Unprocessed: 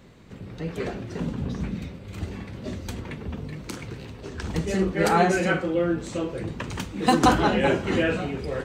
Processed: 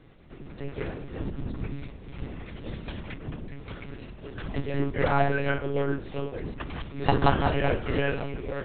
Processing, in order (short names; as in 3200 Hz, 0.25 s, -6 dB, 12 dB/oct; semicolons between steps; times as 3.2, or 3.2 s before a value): 2.46–3.14 high shelf 2800 Hz +7.5 dB; monotone LPC vocoder at 8 kHz 140 Hz; gain -3 dB